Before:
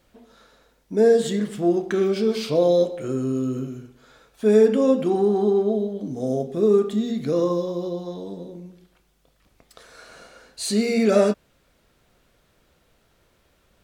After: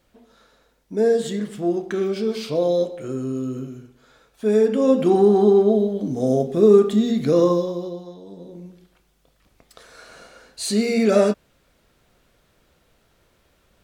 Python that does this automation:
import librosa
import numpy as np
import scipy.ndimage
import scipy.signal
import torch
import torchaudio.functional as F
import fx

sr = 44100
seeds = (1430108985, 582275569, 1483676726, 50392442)

y = fx.gain(x, sr, db=fx.line((4.68, -2.0), (5.09, 5.0), (7.49, 5.0), (8.2, -8.0), (8.63, 1.0)))